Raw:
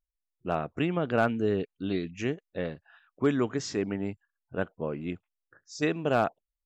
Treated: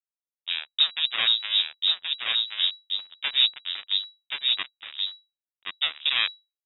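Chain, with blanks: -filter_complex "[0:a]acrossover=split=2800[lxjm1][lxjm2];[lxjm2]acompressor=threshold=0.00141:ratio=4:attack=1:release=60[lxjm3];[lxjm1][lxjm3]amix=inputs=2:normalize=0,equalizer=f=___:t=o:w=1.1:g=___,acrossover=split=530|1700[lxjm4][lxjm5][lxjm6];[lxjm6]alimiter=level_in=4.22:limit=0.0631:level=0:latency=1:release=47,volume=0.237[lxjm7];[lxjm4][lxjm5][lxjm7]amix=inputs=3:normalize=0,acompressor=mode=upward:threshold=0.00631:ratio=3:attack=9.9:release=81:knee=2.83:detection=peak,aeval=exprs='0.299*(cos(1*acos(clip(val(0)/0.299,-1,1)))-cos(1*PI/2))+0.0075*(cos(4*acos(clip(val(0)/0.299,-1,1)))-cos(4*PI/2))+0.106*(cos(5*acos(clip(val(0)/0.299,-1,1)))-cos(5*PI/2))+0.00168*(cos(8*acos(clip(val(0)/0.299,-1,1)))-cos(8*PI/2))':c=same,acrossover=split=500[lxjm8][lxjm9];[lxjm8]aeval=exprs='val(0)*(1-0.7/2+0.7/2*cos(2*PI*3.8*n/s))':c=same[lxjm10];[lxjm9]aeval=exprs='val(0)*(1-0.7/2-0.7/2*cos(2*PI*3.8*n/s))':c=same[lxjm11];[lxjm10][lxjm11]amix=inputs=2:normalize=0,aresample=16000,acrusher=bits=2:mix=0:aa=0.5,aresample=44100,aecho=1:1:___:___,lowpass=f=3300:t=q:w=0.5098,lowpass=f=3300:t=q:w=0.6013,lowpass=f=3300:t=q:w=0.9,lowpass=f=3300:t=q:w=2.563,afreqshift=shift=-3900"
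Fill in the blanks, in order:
110, 11.5, 1077, 0.668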